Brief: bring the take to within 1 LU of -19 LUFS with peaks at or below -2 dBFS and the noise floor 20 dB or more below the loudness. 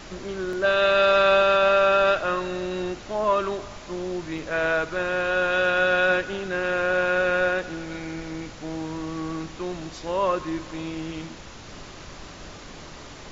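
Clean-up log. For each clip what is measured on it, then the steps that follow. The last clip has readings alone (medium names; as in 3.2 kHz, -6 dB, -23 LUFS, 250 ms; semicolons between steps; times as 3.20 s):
dropouts 2; longest dropout 2.0 ms; noise floor -42 dBFS; noise floor target -44 dBFS; loudness -23.5 LUFS; peak level -9.5 dBFS; loudness target -19.0 LUFS
-> interpolate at 0.53/4.38 s, 2 ms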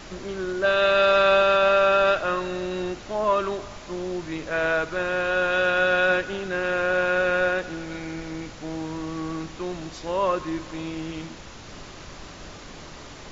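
dropouts 0; noise floor -42 dBFS; noise floor target -44 dBFS
-> noise print and reduce 6 dB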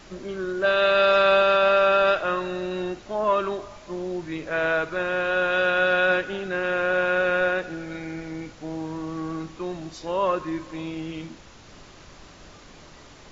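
noise floor -48 dBFS; loudness -23.5 LUFS; peak level -10.0 dBFS; loudness target -19.0 LUFS
-> trim +4.5 dB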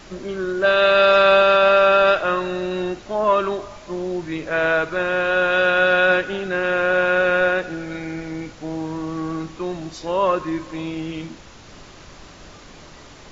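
loudness -19.0 LUFS; peak level -5.5 dBFS; noise floor -43 dBFS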